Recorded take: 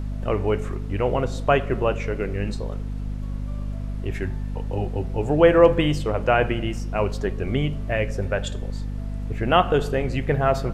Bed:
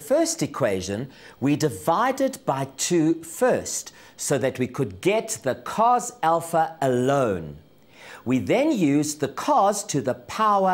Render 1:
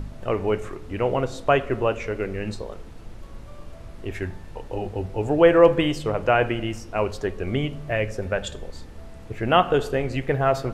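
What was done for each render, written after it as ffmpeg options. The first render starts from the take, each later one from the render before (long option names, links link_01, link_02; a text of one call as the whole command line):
ffmpeg -i in.wav -af "bandreject=frequency=50:width_type=h:width=4,bandreject=frequency=100:width_type=h:width=4,bandreject=frequency=150:width_type=h:width=4,bandreject=frequency=200:width_type=h:width=4,bandreject=frequency=250:width_type=h:width=4" out.wav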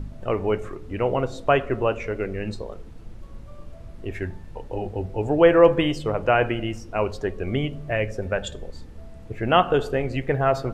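ffmpeg -i in.wav -af "afftdn=noise_reduction=6:noise_floor=-41" out.wav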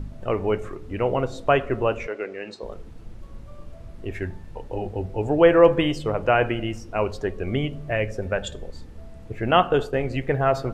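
ffmpeg -i in.wav -filter_complex "[0:a]asettb=1/sr,asplit=3[link_01][link_02][link_03];[link_01]atrim=end=2.074[link_04];[link_02]atrim=start=2.07:end=2.63,asetpts=PTS-STARTPTS,afade=type=in:duration=0.004:curve=qsin,afade=type=out:start_time=0.556:duration=0.004:curve=qsin,highpass=400,lowpass=6600[link_05];[link_03]atrim=start=2.626[link_06];[link_04][link_05]acrossfade=duration=0.004:curve1=hsin:curve2=qsin[link_07];[link_07][link_06]acrossfade=duration=0.004:curve1=qsin:curve2=hsin,asettb=1/sr,asplit=3[link_08][link_09][link_10];[link_08]atrim=end=9.514[link_11];[link_09]atrim=start=9.51:end=10.1,asetpts=PTS-STARTPTS,afade=type=in:duration=0.004:curve=qsin,afade=type=out:start_time=0.586:duration=0.004:curve=qsin,agate=range=-33dB:threshold=-28dB:ratio=3:release=100:detection=peak[link_12];[link_10]atrim=start=10.096[link_13];[link_11][link_12]acrossfade=duration=0.004:curve1=hsin:curve2=qsin[link_14];[link_14][link_13]acrossfade=duration=0.004:curve1=qsin:curve2=hsin" out.wav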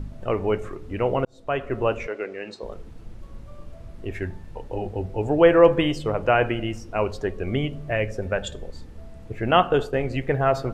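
ffmpeg -i in.wav -filter_complex "[0:a]asplit=2[link_01][link_02];[link_01]atrim=end=1.25,asetpts=PTS-STARTPTS,afade=type=out:start_time=1.246:duration=0.004:curve=hsin[link_03];[link_02]atrim=start=1.25,asetpts=PTS-STARTPTS,afade=type=in:duration=0.62[link_04];[link_03][link_04]concat=n=2:v=0:a=1" out.wav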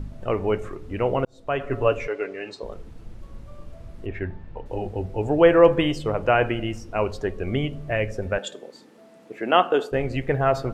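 ffmpeg -i in.wav -filter_complex "[0:a]asettb=1/sr,asplit=3[link_01][link_02][link_03];[link_01]atrim=end=1.594[link_04];[link_02]atrim=start=1.59:end=2.63,asetpts=PTS-STARTPTS,afade=type=in:duration=0.004:curve=qsin,afade=type=out:start_time=1.036:duration=0.004:curve=qsin,aecho=1:1:7:0.57,atrim=end_sample=45864[link_05];[link_03]atrim=start=2.626[link_06];[link_04][link_05]acrossfade=duration=0.004:curve1=hsin:curve2=qsin[link_07];[link_07][link_06]acrossfade=duration=0.004:curve1=qsin:curve2=hsin,asettb=1/sr,asplit=3[link_08][link_09][link_10];[link_08]atrim=end=4.064[link_11];[link_09]atrim=start=4.06:end=4.66,asetpts=PTS-STARTPTS,afade=type=in:duration=0.004:curve=qsin,afade=type=out:start_time=0.596:duration=0.004:curve=qsin,lowpass=2900[link_12];[link_10]atrim=start=4.656[link_13];[link_11][link_12]acrossfade=duration=0.004:curve1=hsin:curve2=qsin[link_14];[link_14][link_13]acrossfade=duration=0.004:curve1=qsin:curve2=hsin,asettb=1/sr,asplit=3[link_15][link_16][link_17];[link_15]atrim=end=8.384[link_18];[link_16]atrim=start=8.38:end=9.92,asetpts=PTS-STARTPTS,afade=type=in:duration=0.004:curve=qsin,afade=type=out:start_time=1.536:duration=0.004:curve=qsin,highpass=frequency=230:width=0.5412,highpass=frequency=230:width=1.3066[link_19];[link_17]atrim=start=9.916[link_20];[link_18][link_19]acrossfade=duration=0.004:curve1=hsin:curve2=qsin[link_21];[link_21][link_20]acrossfade=duration=0.004:curve1=qsin:curve2=hsin" out.wav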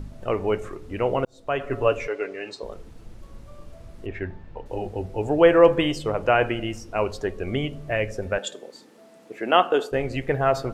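ffmpeg -i in.wav -af "bass=frequency=250:gain=-3,treble=frequency=4000:gain=4" out.wav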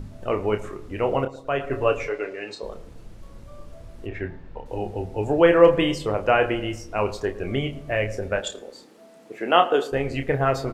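ffmpeg -i in.wav -filter_complex "[0:a]asplit=2[link_01][link_02];[link_02]adelay=29,volume=-7.5dB[link_03];[link_01][link_03]amix=inputs=2:normalize=0,asplit=2[link_04][link_05];[link_05]adelay=111,lowpass=frequency=1600:poles=1,volume=-16.5dB,asplit=2[link_06][link_07];[link_07]adelay=111,lowpass=frequency=1600:poles=1,volume=0.43,asplit=2[link_08][link_09];[link_09]adelay=111,lowpass=frequency=1600:poles=1,volume=0.43,asplit=2[link_10][link_11];[link_11]adelay=111,lowpass=frequency=1600:poles=1,volume=0.43[link_12];[link_04][link_06][link_08][link_10][link_12]amix=inputs=5:normalize=0" out.wav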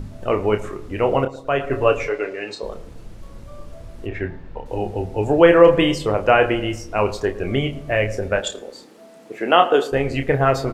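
ffmpeg -i in.wav -af "volume=4.5dB,alimiter=limit=-1dB:level=0:latency=1" out.wav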